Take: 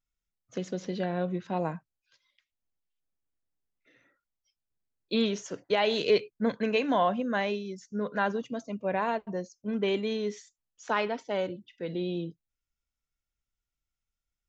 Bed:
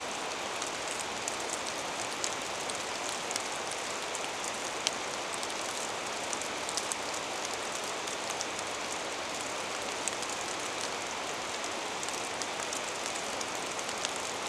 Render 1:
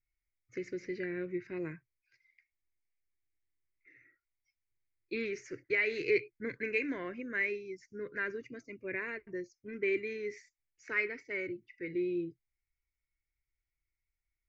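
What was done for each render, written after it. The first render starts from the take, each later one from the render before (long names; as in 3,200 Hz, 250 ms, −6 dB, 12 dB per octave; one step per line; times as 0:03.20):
drawn EQ curve 130 Hz 0 dB, 200 Hz −18 dB, 350 Hz +1 dB, 790 Hz −30 dB, 2,200 Hz +9 dB, 3,300 Hz −25 dB, 4,800 Hz −7 dB, 7,100 Hz −14 dB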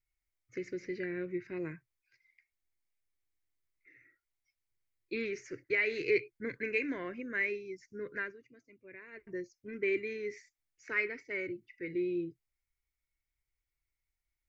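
0:08.18–0:09.27: duck −13.5 dB, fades 0.16 s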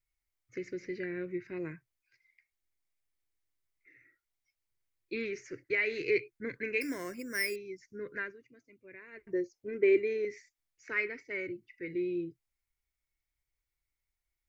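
0:06.81–0:07.56: bad sample-rate conversion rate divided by 6×, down none, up hold
0:09.33–0:10.25: flat-topped bell 540 Hz +8 dB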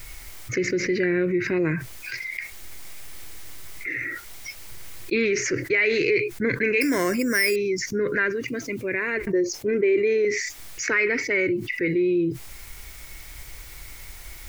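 in parallel at +1 dB: brickwall limiter −24.5 dBFS, peak gain reduction 8 dB
on the sum: envelope flattener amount 70%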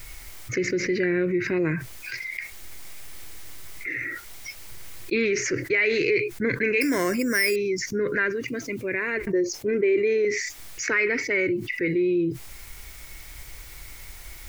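level −1 dB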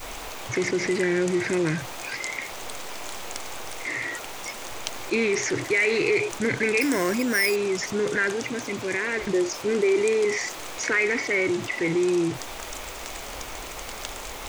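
mix in bed −2 dB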